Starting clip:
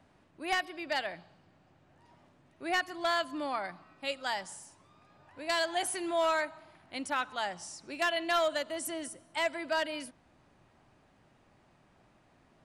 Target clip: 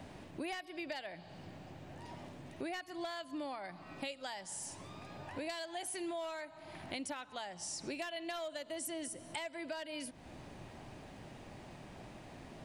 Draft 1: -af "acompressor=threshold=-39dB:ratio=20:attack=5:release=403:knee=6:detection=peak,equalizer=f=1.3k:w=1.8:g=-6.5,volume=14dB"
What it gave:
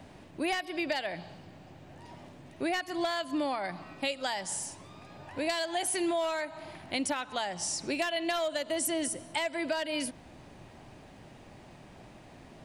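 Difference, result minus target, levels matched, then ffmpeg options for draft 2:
compressor: peak gain reduction -10.5 dB
-af "acompressor=threshold=-50dB:ratio=20:attack=5:release=403:knee=6:detection=peak,equalizer=f=1.3k:w=1.8:g=-6.5,volume=14dB"

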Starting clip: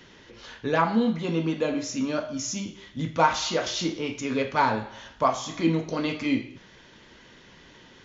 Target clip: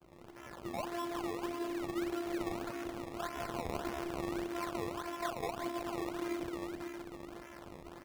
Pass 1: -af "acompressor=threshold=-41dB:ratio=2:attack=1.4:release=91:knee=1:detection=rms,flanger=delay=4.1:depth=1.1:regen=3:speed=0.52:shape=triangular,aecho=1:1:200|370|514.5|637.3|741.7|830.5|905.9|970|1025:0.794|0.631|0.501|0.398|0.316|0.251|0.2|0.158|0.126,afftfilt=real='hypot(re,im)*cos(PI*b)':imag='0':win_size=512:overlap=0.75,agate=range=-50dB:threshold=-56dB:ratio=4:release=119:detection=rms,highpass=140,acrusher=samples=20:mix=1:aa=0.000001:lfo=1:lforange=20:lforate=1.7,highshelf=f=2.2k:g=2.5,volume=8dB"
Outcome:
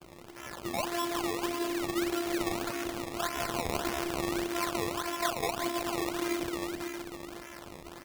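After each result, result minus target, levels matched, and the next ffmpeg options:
4000 Hz band +5.0 dB; compressor: peak gain reduction -5 dB
-af "acompressor=threshold=-41dB:ratio=2:attack=1.4:release=91:knee=1:detection=rms,flanger=delay=4.1:depth=1.1:regen=3:speed=0.52:shape=triangular,aecho=1:1:200|370|514.5|637.3|741.7|830.5|905.9|970|1025:0.794|0.631|0.501|0.398|0.316|0.251|0.2|0.158|0.126,afftfilt=real='hypot(re,im)*cos(PI*b)':imag='0':win_size=512:overlap=0.75,agate=range=-50dB:threshold=-56dB:ratio=4:release=119:detection=rms,highpass=140,acrusher=samples=20:mix=1:aa=0.000001:lfo=1:lforange=20:lforate=1.7,highshelf=f=2.2k:g=-6.5,volume=8dB"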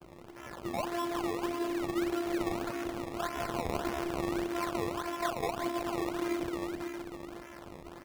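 compressor: peak gain reduction -5 dB
-af "acompressor=threshold=-50.5dB:ratio=2:attack=1.4:release=91:knee=1:detection=rms,flanger=delay=4.1:depth=1.1:regen=3:speed=0.52:shape=triangular,aecho=1:1:200|370|514.5|637.3|741.7|830.5|905.9|970|1025:0.794|0.631|0.501|0.398|0.316|0.251|0.2|0.158|0.126,afftfilt=real='hypot(re,im)*cos(PI*b)':imag='0':win_size=512:overlap=0.75,agate=range=-50dB:threshold=-56dB:ratio=4:release=119:detection=rms,highpass=140,acrusher=samples=20:mix=1:aa=0.000001:lfo=1:lforange=20:lforate=1.7,highshelf=f=2.2k:g=-6.5,volume=8dB"

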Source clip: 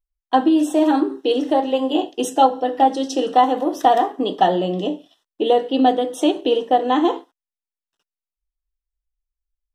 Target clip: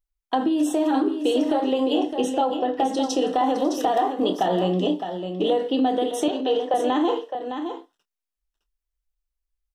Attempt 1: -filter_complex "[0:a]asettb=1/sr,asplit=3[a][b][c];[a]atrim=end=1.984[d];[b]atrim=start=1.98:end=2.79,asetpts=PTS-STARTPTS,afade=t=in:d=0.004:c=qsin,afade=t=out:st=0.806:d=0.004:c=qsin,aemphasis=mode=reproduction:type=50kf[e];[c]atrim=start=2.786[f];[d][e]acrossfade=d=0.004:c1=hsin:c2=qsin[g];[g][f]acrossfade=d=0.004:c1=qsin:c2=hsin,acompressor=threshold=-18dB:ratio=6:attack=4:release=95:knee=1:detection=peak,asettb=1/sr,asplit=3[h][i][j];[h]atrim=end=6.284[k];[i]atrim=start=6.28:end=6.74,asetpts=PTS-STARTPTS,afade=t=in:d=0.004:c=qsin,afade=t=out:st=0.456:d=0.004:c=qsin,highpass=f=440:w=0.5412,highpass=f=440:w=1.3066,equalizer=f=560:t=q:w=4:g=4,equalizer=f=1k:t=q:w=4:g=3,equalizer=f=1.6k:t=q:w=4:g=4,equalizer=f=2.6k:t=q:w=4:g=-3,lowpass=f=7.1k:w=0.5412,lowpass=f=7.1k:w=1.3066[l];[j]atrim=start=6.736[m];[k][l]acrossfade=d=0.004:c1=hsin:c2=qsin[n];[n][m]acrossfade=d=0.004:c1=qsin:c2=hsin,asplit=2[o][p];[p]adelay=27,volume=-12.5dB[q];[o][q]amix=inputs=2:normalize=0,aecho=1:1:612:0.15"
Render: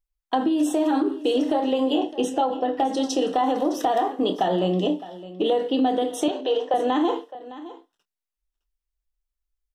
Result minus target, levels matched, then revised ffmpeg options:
echo-to-direct -8.5 dB
-filter_complex "[0:a]asettb=1/sr,asplit=3[a][b][c];[a]atrim=end=1.984[d];[b]atrim=start=1.98:end=2.79,asetpts=PTS-STARTPTS,afade=t=in:d=0.004:c=qsin,afade=t=out:st=0.806:d=0.004:c=qsin,aemphasis=mode=reproduction:type=50kf[e];[c]atrim=start=2.786[f];[d][e]acrossfade=d=0.004:c1=hsin:c2=qsin[g];[g][f]acrossfade=d=0.004:c1=qsin:c2=hsin,acompressor=threshold=-18dB:ratio=6:attack=4:release=95:knee=1:detection=peak,asettb=1/sr,asplit=3[h][i][j];[h]atrim=end=6.284[k];[i]atrim=start=6.28:end=6.74,asetpts=PTS-STARTPTS,afade=t=in:d=0.004:c=qsin,afade=t=out:st=0.456:d=0.004:c=qsin,highpass=f=440:w=0.5412,highpass=f=440:w=1.3066,equalizer=f=560:t=q:w=4:g=4,equalizer=f=1k:t=q:w=4:g=3,equalizer=f=1.6k:t=q:w=4:g=4,equalizer=f=2.6k:t=q:w=4:g=-3,lowpass=f=7.1k:w=0.5412,lowpass=f=7.1k:w=1.3066[l];[j]atrim=start=6.736[m];[k][l]acrossfade=d=0.004:c1=hsin:c2=qsin[n];[n][m]acrossfade=d=0.004:c1=qsin:c2=hsin,asplit=2[o][p];[p]adelay=27,volume=-12.5dB[q];[o][q]amix=inputs=2:normalize=0,aecho=1:1:612:0.398"

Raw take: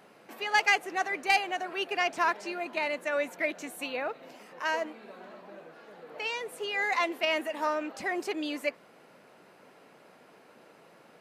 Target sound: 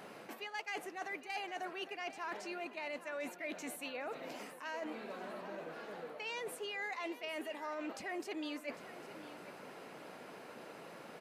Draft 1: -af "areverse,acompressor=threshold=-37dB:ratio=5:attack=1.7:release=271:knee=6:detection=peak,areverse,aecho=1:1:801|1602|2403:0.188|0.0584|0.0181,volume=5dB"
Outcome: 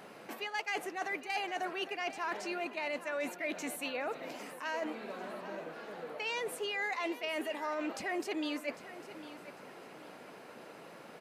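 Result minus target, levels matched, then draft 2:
compressor: peak gain reduction -5.5 dB
-af "areverse,acompressor=threshold=-44dB:ratio=5:attack=1.7:release=271:knee=6:detection=peak,areverse,aecho=1:1:801|1602|2403:0.188|0.0584|0.0181,volume=5dB"

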